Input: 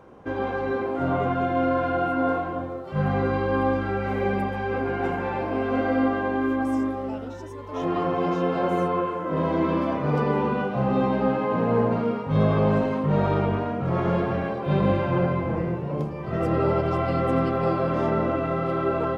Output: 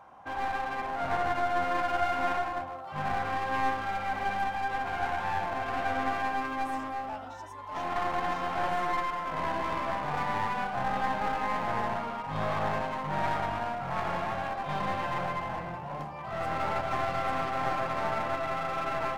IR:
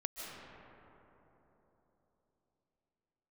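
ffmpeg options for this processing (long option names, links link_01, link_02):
-af "lowshelf=frequency=580:width_type=q:width=3:gain=-9.5,aeval=exprs='clip(val(0),-1,0.0224)':channel_layout=same,volume=-2.5dB"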